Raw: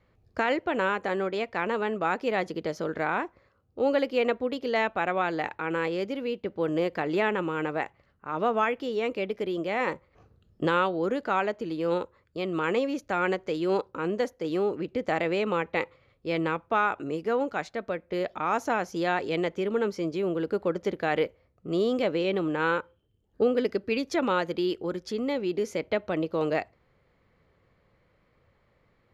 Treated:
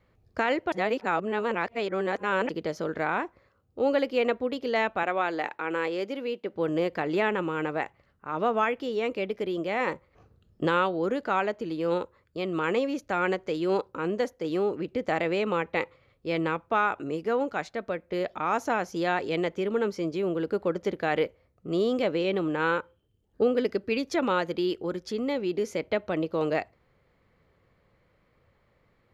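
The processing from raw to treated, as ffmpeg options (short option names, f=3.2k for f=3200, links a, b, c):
-filter_complex "[0:a]asettb=1/sr,asplit=3[a][b][c];[a]atrim=end=5.034[d];[b]atrim=start=5.03:end=6.53,asetpts=PTS-STARTPTS,afade=t=in:d=0.004:c=qsin,afade=t=out:st=1.496:d=0.004:c=qsin,highpass=250[e];[c]atrim=start=6.526[f];[d][e]acrossfade=d=0.004:c1=hsin:c2=qsin[g];[g][f]acrossfade=d=0.004:c1=qsin:c2=hsin,asplit=3[h][i][j];[h]atrim=end=0.722[k];[i]atrim=start=0.718:end=2.492,asetpts=PTS-STARTPTS,areverse[l];[j]atrim=start=2.488[m];[k][l]acrossfade=d=0.004:c1=hsin:c2=hsin[n];[n][m]acrossfade=d=0.004:c1=hsin:c2=hsin"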